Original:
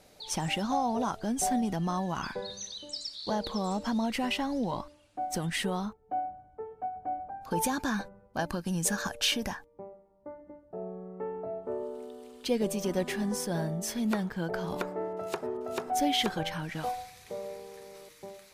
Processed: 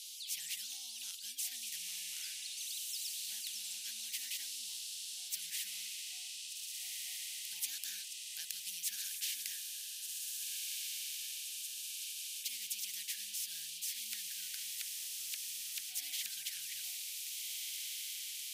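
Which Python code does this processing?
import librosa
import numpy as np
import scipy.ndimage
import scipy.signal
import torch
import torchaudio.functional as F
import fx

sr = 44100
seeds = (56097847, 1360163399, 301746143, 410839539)

y = scipy.signal.sosfilt(scipy.signal.ellip(4, 1.0, 60, 3000.0, 'highpass', fs=sr, output='sos'), x)
y = fx.echo_diffused(y, sr, ms=1601, feedback_pct=42, wet_db=-8.5)
y = fx.spectral_comp(y, sr, ratio=4.0)
y = y * 10.0 ** (-1.0 / 20.0)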